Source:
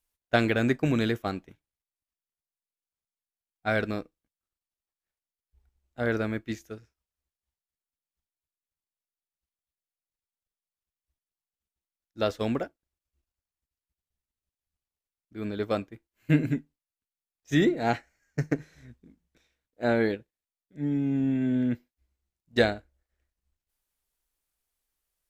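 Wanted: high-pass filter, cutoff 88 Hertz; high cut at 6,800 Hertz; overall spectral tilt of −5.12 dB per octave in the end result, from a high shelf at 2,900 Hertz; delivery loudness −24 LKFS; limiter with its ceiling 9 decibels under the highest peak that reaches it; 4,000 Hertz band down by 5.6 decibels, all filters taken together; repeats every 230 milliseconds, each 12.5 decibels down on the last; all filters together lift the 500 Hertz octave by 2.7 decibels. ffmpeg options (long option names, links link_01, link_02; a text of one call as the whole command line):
ffmpeg -i in.wav -af "highpass=88,lowpass=6800,equalizer=frequency=500:width_type=o:gain=3.5,highshelf=frequency=2900:gain=-4.5,equalizer=frequency=4000:width_type=o:gain=-3,alimiter=limit=-14.5dB:level=0:latency=1,aecho=1:1:230|460|690:0.237|0.0569|0.0137,volume=5dB" out.wav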